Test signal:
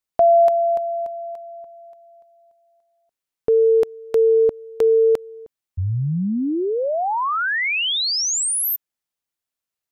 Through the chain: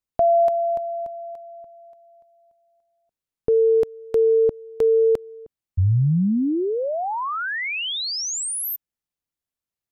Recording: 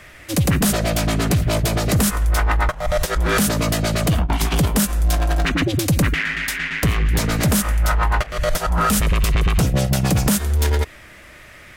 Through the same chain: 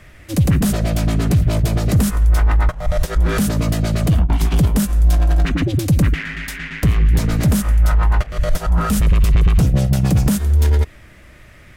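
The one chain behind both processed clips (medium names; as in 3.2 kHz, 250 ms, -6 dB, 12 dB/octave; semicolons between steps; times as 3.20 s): bass shelf 310 Hz +11 dB; trim -5.5 dB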